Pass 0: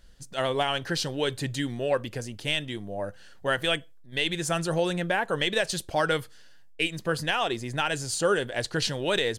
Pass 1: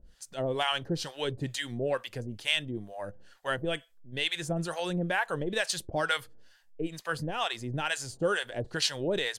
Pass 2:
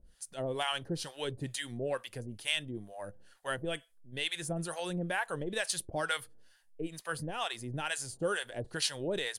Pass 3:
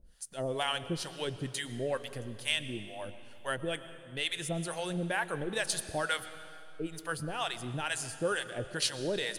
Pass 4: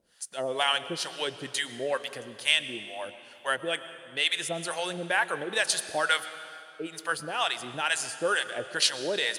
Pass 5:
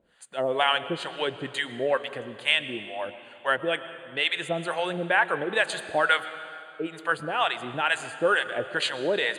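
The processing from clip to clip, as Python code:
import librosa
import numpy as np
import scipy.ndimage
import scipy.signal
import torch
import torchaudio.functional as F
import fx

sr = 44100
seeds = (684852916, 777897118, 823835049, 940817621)

y1 = fx.harmonic_tremolo(x, sr, hz=2.2, depth_pct=100, crossover_hz=680.0)
y1 = y1 * 10.0 ** (1.0 / 20.0)
y2 = fx.peak_eq(y1, sr, hz=9800.0, db=13.0, octaves=0.31)
y2 = y2 * 10.0 ** (-4.5 / 20.0)
y3 = fx.rev_freeverb(y2, sr, rt60_s=2.5, hf_ratio=0.9, predelay_ms=75, drr_db=12.5)
y3 = y3 * 10.0 ** (1.0 / 20.0)
y4 = fx.weighting(y3, sr, curve='A')
y4 = y4 * 10.0 ** (6.5 / 20.0)
y5 = np.convolve(y4, np.full(8, 1.0 / 8))[:len(y4)]
y5 = y5 * 10.0 ** (5.0 / 20.0)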